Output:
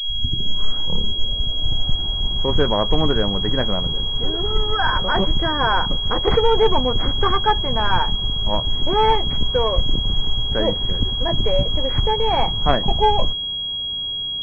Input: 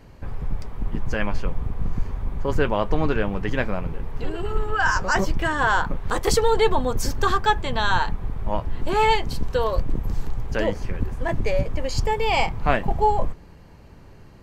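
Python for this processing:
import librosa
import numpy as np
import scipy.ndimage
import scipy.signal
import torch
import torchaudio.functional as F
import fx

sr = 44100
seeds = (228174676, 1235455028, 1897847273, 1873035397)

y = fx.tape_start_head(x, sr, length_s=2.56)
y = fx.pwm(y, sr, carrier_hz=3300.0)
y = y * librosa.db_to_amplitude(3.0)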